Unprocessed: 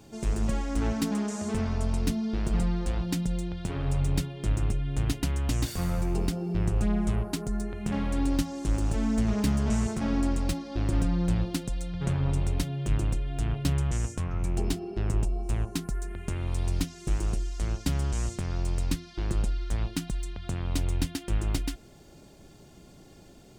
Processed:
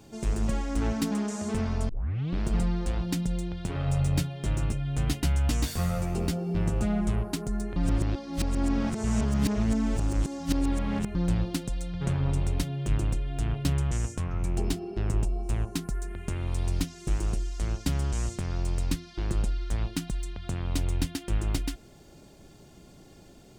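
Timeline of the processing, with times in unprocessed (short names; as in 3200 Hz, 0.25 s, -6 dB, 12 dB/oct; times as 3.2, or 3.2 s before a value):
1.89 tape start 0.53 s
3.74–7.01 doubler 13 ms -3.5 dB
7.76–11.15 reverse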